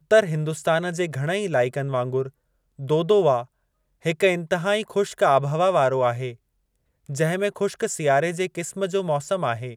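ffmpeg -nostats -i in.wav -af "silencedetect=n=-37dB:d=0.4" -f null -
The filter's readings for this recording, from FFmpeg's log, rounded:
silence_start: 2.29
silence_end: 2.79 | silence_duration: 0.50
silence_start: 3.44
silence_end: 4.05 | silence_duration: 0.61
silence_start: 6.33
silence_end: 7.09 | silence_duration: 0.76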